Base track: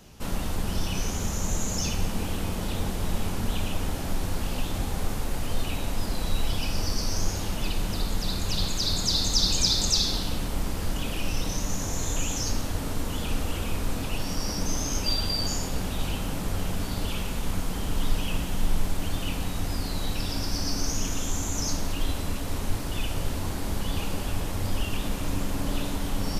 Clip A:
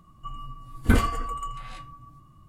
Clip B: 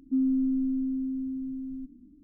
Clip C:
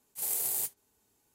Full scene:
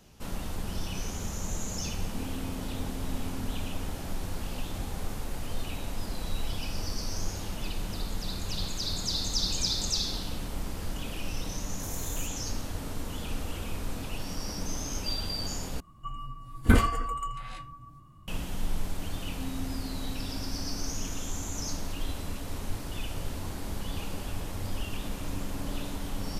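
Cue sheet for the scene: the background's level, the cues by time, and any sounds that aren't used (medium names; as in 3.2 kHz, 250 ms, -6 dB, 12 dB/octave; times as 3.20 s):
base track -6 dB
2.03 s: add B -11 dB + compression, threshold -29 dBFS
11.61 s: add C -13 dB
15.80 s: replace with A -0.5 dB
19.28 s: add B -14.5 dB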